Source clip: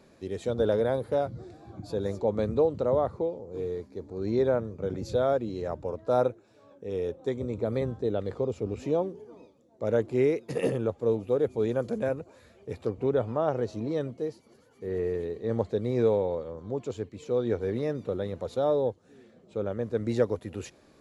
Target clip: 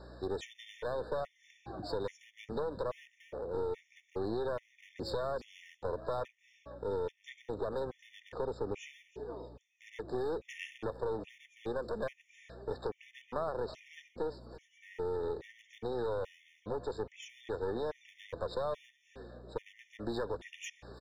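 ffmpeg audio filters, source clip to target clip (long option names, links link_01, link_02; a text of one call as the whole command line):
ffmpeg -i in.wav -filter_complex "[0:a]acrossover=split=350 6300:gain=0.178 1 0.0794[link_01][link_02][link_03];[link_01][link_02][link_03]amix=inputs=3:normalize=0,acrossover=split=1100[link_04][link_05];[link_04]alimiter=level_in=2.5dB:limit=-24dB:level=0:latency=1,volume=-2.5dB[link_06];[link_06][link_05]amix=inputs=2:normalize=0,acompressor=threshold=-38dB:ratio=6,aeval=exprs='clip(val(0),-1,0.00631)':channel_layout=same,aeval=exprs='val(0)+0.00112*(sin(2*PI*60*n/s)+sin(2*PI*2*60*n/s)/2+sin(2*PI*3*60*n/s)/3+sin(2*PI*4*60*n/s)/4+sin(2*PI*5*60*n/s)/5)':channel_layout=same,asplit=2[link_07][link_08];[link_08]aecho=0:1:326|652|978:0.133|0.0427|0.0137[link_09];[link_07][link_09]amix=inputs=2:normalize=0,afftfilt=real='re*gt(sin(2*PI*1.2*pts/sr)*(1-2*mod(floor(b*sr/1024/1800),2)),0)':imag='im*gt(sin(2*PI*1.2*pts/sr)*(1-2*mod(floor(b*sr/1024/1800),2)),0)':win_size=1024:overlap=0.75,volume=7.5dB" out.wav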